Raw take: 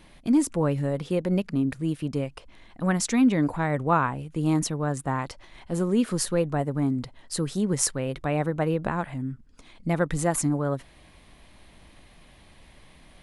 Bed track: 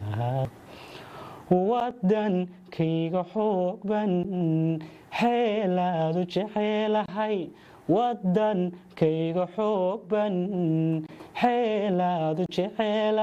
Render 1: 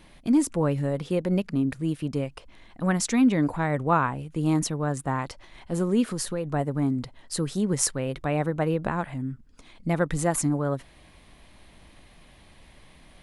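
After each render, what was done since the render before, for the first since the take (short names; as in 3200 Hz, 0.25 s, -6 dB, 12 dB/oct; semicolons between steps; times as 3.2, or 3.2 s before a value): 6.05–6.52 compressor 3:1, threshold -26 dBFS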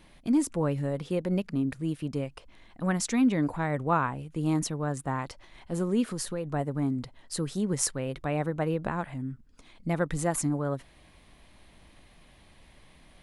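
gain -3.5 dB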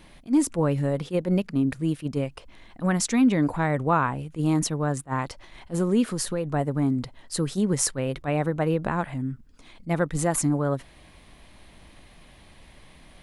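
in parallel at -1.5 dB: limiter -20 dBFS, peak gain reduction 9.5 dB; on the sum: attack slew limiter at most 370 dB/s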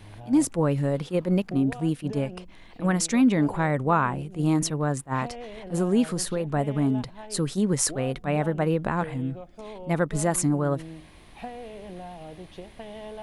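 add bed track -15.5 dB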